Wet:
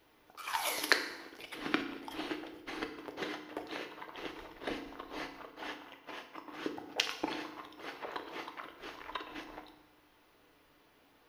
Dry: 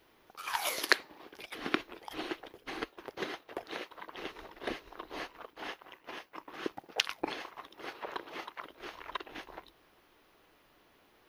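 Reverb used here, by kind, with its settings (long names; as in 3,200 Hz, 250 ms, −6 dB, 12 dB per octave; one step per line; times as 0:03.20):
feedback delay network reverb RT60 0.92 s, low-frequency decay 1.5×, high-frequency decay 0.9×, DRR 5 dB
level −2 dB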